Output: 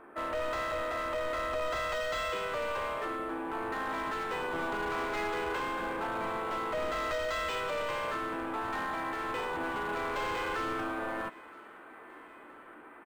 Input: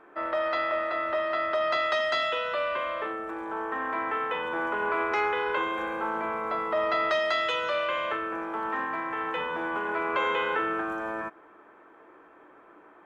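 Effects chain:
soft clipping −31.5 dBFS, distortion −8 dB
pitch-shifted copies added −4 semitones −7 dB
low-shelf EQ 79 Hz +7 dB
feedback echo with a band-pass in the loop 969 ms, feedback 80%, band-pass 1,800 Hz, level −19.5 dB
linearly interpolated sample-rate reduction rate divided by 4×

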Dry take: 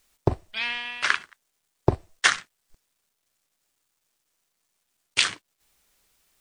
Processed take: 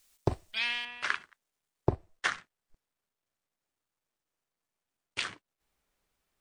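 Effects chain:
high-shelf EQ 2,600 Hz +8 dB, from 0:00.85 −6 dB, from 0:01.92 −11.5 dB
level −6.5 dB

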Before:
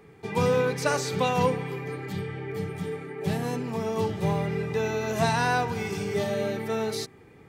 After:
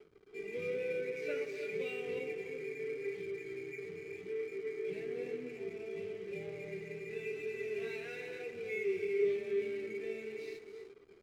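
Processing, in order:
in parallel at +2 dB: downward compressor 8 to 1, threshold −34 dBFS, peak gain reduction 15 dB
on the sum: time stretch by phase vocoder 1.5×
pair of resonant band-passes 960 Hz, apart 2.5 octaves
reverb whose tail is shaped and stops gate 360 ms rising, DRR 7 dB
flanger 0.92 Hz, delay 7.9 ms, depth 5.7 ms, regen +79%
slack as between gear wheels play −54.5 dBFS
level +1.5 dB

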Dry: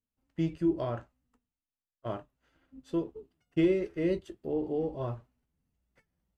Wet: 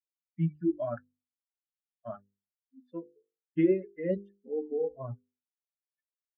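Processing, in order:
spectral dynamics exaggerated over time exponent 3
loudspeaker in its box 140–2,100 Hz, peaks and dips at 180 Hz +7 dB, 550 Hz +5 dB, 890 Hz −10 dB
mains-hum notches 50/100/150/200/250/300/350/400/450/500 Hz
level +4.5 dB

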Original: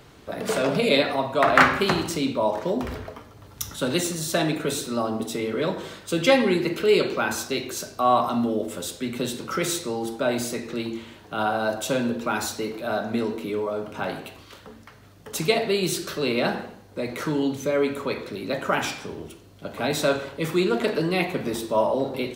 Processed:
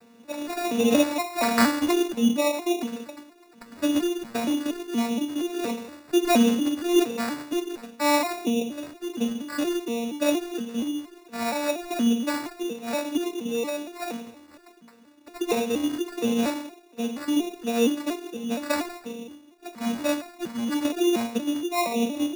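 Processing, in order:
vocoder with an arpeggio as carrier major triad, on A#3, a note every 235 ms
0:19.75–0:20.81: parametric band 440 Hz −14 dB 0.49 octaves
decimation without filtering 14×

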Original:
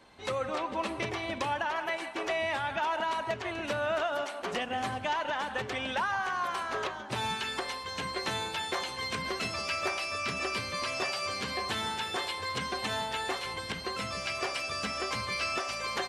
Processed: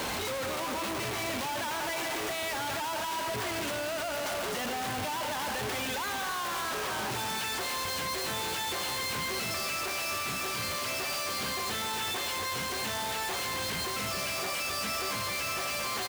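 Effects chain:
sign of each sample alone
high-pass filter 45 Hz
single-tap delay 270 ms −10 dB

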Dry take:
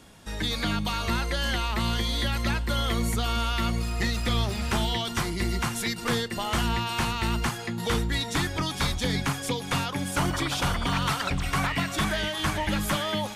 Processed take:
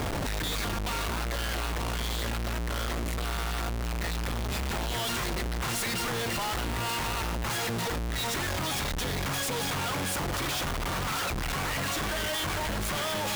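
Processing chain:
compressor whose output falls as the input rises −35 dBFS, ratio −1
parametric band 220 Hz −8 dB 1.7 octaves
comparator with hysteresis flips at −44 dBFS
level +5.5 dB

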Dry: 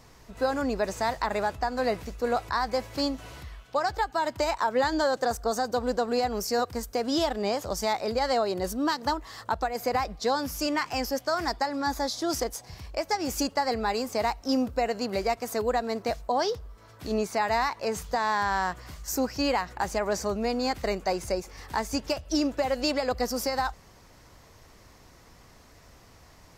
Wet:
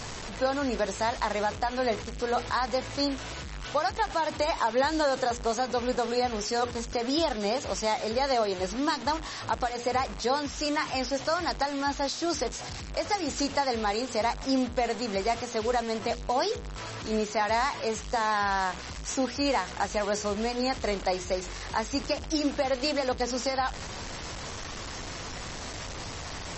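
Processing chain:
linear delta modulator 64 kbit/s, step −31 dBFS
mains-hum notches 60/120/180/240/300/360/420/480 Hz
MP3 32 kbit/s 32,000 Hz

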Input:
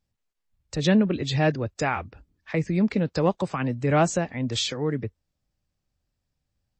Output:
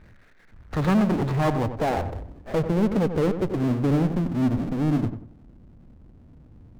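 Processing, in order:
lower of the sound and its delayed copy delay 0.48 ms
low-pass filter sweep 1,600 Hz → 270 Hz, 0:00.40–0:04.21
power curve on the samples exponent 0.5
feedback echo with a low-pass in the loop 93 ms, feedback 32%, low-pass 1,800 Hz, level −9 dB
level −5 dB

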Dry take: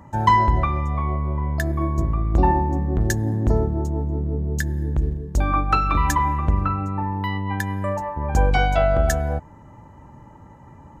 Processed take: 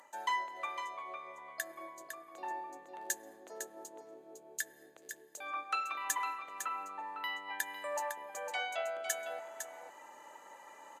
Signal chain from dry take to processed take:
parametric band 940 Hz −15 dB 2 octaves
notch filter 5,400 Hz, Q 7
dynamic equaliser 4,500 Hz, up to −5 dB, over −53 dBFS, Q 2.6
reversed playback
downward compressor 4 to 1, threshold −37 dBFS, peak gain reduction 20 dB
reversed playback
high-pass filter 610 Hz 24 dB per octave
single-tap delay 505 ms −8 dB
level +10.5 dB
Ogg Vorbis 96 kbit/s 32,000 Hz

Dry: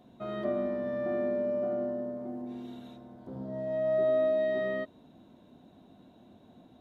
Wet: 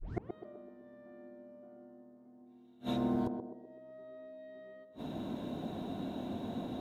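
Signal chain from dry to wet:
turntable start at the beginning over 0.31 s
gate with flip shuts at −37 dBFS, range −37 dB
feedback echo with a band-pass in the loop 126 ms, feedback 54%, band-pass 430 Hz, level −4 dB
level +15 dB

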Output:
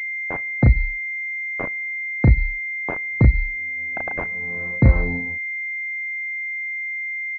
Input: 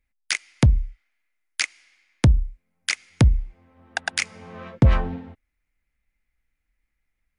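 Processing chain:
double-tracking delay 34 ms −2.5 dB
switching amplifier with a slow clock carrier 2,100 Hz

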